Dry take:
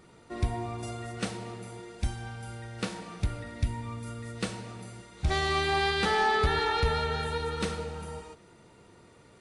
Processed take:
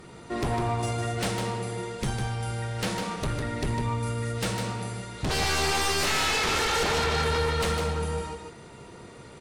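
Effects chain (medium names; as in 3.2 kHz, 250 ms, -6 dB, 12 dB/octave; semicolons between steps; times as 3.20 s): sine folder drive 12 dB, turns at -16.5 dBFS; delay 153 ms -6 dB; on a send at -13 dB: reverberation RT60 0.95 s, pre-delay 3 ms; on the sum: trim -7 dB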